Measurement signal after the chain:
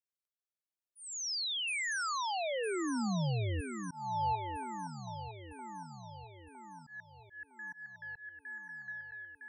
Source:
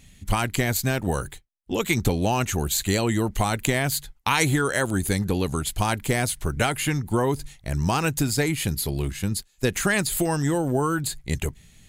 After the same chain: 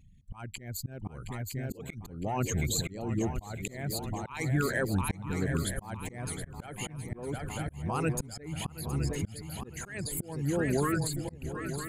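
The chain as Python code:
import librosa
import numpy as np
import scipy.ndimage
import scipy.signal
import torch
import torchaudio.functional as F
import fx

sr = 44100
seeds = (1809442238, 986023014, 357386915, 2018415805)

p1 = fx.envelope_sharpen(x, sr, power=2.0)
p2 = fx.peak_eq(p1, sr, hz=150.0, db=4.0, octaves=1.2)
p3 = p2 + fx.echo_swing(p2, sr, ms=959, ratio=3, feedback_pct=55, wet_db=-9, dry=0)
p4 = fx.auto_swell(p3, sr, attack_ms=367.0)
y = p4 * librosa.db_to_amplitude(-7.0)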